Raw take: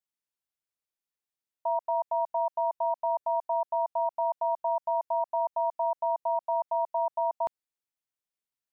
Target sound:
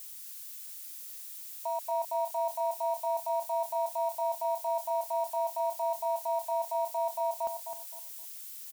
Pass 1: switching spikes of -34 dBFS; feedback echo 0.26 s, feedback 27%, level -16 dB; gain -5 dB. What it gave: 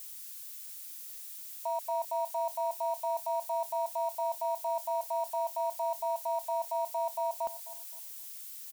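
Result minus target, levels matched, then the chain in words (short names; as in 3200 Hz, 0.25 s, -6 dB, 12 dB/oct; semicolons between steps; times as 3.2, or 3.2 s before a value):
echo-to-direct -8.5 dB
switching spikes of -34 dBFS; feedback echo 0.26 s, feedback 27%, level -7.5 dB; gain -5 dB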